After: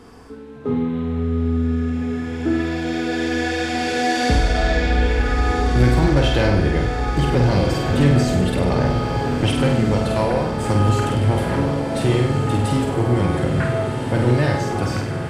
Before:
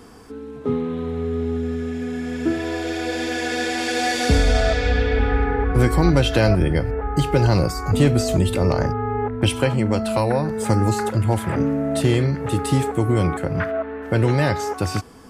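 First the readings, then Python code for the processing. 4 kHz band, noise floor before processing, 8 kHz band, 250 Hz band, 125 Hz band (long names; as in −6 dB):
+0.5 dB, −35 dBFS, −2.5 dB, +2.0 dB, +1.5 dB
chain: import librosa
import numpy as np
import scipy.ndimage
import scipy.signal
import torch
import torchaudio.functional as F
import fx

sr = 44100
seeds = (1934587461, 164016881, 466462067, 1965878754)

y = fx.echo_diffused(x, sr, ms=1558, feedback_pct=63, wet_db=-7)
y = 10.0 ** (-9.5 / 20.0) * np.tanh(y / 10.0 ** (-9.5 / 20.0))
y = fx.high_shelf(y, sr, hz=7600.0, db=-9.5)
y = fx.room_flutter(y, sr, wall_m=8.4, rt60_s=0.63)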